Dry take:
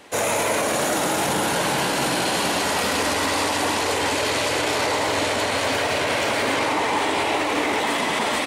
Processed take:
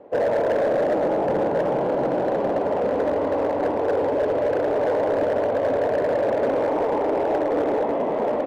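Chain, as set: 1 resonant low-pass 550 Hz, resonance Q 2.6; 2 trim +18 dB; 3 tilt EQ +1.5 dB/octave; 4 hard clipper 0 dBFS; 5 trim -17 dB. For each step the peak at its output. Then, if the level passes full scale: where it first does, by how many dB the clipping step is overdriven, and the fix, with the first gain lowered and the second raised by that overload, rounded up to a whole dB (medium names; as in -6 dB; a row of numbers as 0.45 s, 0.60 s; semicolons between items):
-8.0 dBFS, +10.0 dBFS, +9.0 dBFS, 0.0 dBFS, -17.0 dBFS; step 2, 9.0 dB; step 2 +9 dB, step 5 -8 dB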